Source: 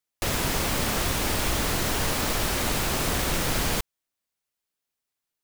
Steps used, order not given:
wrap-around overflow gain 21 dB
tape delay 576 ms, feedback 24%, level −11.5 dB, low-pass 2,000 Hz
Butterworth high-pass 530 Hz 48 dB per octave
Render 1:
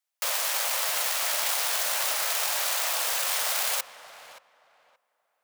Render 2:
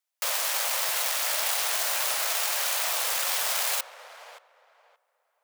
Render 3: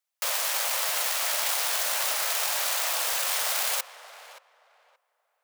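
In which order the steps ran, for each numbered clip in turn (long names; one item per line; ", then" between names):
wrap-around overflow, then Butterworth high-pass, then tape delay
tape delay, then wrap-around overflow, then Butterworth high-pass
wrap-around overflow, then tape delay, then Butterworth high-pass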